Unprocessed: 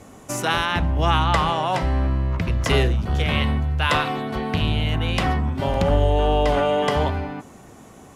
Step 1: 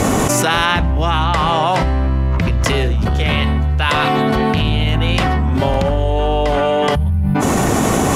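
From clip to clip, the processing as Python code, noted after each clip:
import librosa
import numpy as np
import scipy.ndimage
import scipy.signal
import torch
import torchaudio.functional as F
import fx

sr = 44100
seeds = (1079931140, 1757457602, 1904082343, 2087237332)

y = fx.spec_box(x, sr, start_s=6.95, length_s=0.41, low_hz=230.0, high_hz=8800.0, gain_db=-25)
y = fx.env_flatten(y, sr, amount_pct=100)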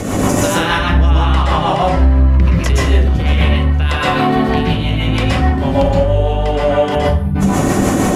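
y = fx.rotary(x, sr, hz=6.3)
y = fx.rev_plate(y, sr, seeds[0], rt60_s=0.52, hf_ratio=0.65, predelay_ms=110, drr_db=-5.0)
y = y * 10.0 ** (-3.5 / 20.0)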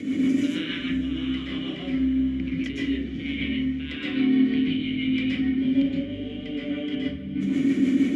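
y = fx.vowel_filter(x, sr, vowel='i')
y = fx.echo_diffused(y, sr, ms=495, feedback_pct=65, wet_db=-15.5)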